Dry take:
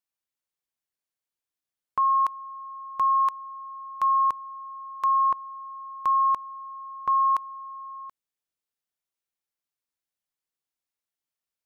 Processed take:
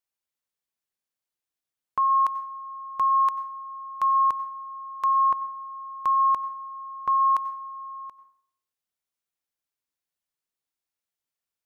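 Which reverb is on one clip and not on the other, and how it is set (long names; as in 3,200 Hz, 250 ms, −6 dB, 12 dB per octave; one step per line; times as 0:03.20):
dense smooth reverb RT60 0.61 s, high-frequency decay 0.65×, pre-delay 80 ms, DRR 14.5 dB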